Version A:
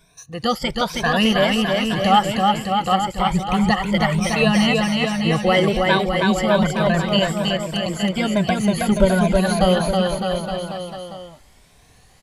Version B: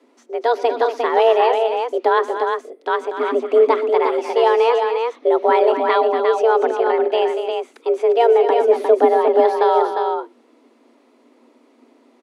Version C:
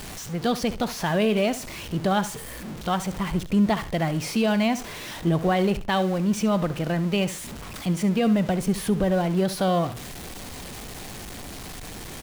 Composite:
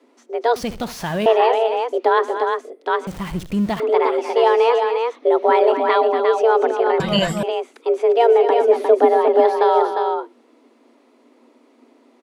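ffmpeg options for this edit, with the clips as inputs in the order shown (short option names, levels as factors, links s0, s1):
-filter_complex "[2:a]asplit=2[s0][s1];[1:a]asplit=4[s2][s3][s4][s5];[s2]atrim=end=0.562[s6];[s0]atrim=start=0.558:end=1.262[s7];[s3]atrim=start=1.258:end=3.072[s8];[s1]atrim=start=3.068:end=3.802[s9];[s4]atrim=start=3.798:end=7.002[s10];[0:a]atrim=start=6.998:end=7.432[s11];[s5]atrim=start=7.428[s12];[s6][s7]acrossfade=d=0.004:c1=hsin:c2=hsin[s13];[s13][s8]acrossfade=d=0.004:c1=hsin:c2=hsin[s14];[s14][s9]acrossfade=d=0.004:c1=hsin:c2=hsin[s15];[s15][s10]acrossfade=d=0.004:c1=hsin:c2=hsin[s16];[s16][s11]acrossfade=d=0.004:c1=hsin:c2=hsin[s17];[s17][s12]acrossfade=d=0.004:c1=hsin:c2=hsin"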